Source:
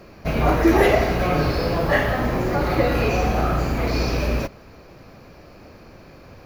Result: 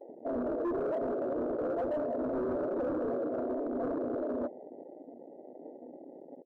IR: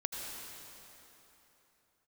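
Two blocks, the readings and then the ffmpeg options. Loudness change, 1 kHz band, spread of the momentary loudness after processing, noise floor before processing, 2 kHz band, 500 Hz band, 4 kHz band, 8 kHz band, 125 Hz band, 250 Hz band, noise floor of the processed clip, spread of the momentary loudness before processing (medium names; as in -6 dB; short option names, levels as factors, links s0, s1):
-13.0 dB, -17.0 dB, 17 LU, -46 dBFS, -26.5 dB, -9.5 dB, under -35 dB, under -35 dB, -29.0 dB, -11.0 dB, -51 dBFS, 7 LU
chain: -filter_complex "[0:a]acompressor=threshold=0.0891:ratio=4,asoftclip=type=tanh:threshold=0.0944,asplit=2[s0][s1];[s1]adelay=367.3,volume=0.126,highshelf=f=4000:g=-8.27[s2];[s0][s2]amix=inputs=2:normalize=0,afftfilt=real='re*between(b*sr/4096,220,690)':imag='im*between(b*sr/4096,220,690)':win_size=4096:overlap=0.75,flanger=delay=3.3:depth=5.2:regen=65:speed=0.99:shape=sinusoidal,afreqshift=13,volume=56.2,asoftclip=hard,volume=0.0178,acontrast=33,afwtdn=0.0141"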